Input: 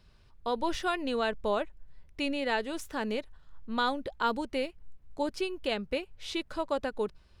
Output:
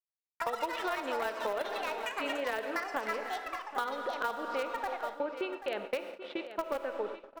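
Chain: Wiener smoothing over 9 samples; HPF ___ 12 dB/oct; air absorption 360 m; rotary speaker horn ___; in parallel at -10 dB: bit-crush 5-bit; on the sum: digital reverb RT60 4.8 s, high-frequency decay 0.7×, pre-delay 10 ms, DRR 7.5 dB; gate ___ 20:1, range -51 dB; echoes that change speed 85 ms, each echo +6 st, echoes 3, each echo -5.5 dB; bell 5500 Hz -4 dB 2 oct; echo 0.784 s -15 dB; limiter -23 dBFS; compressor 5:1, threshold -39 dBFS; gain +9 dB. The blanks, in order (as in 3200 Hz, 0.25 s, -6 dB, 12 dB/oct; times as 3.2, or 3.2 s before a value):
610 Hz, 6 Hz, -47 dBFS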